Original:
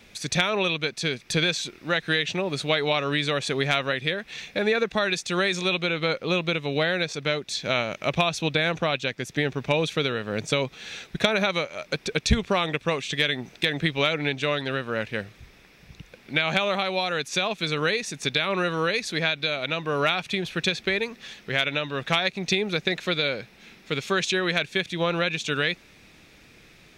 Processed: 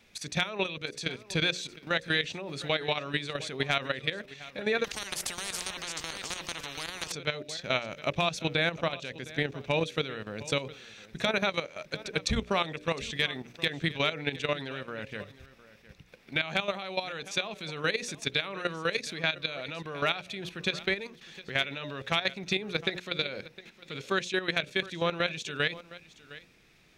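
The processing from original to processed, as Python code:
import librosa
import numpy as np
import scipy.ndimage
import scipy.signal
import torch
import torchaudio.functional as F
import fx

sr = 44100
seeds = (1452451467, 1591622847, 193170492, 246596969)

y = fx.hum_notches(x, sr, base_hz=60, count=10)
y = fx.level_steps(y, sr, step_db=12)
y = y + 10.0 ** (-18.0 / 20.0) * np.pad(y, (int(710 * sr / 1000.0), 0))[:len(y)]
y = fx.spectral_comp(y, sr, ratio=10.0, at=(4.84, 7.12))
y = F.gain(torch.from_numpy(y), -2.0).numpy()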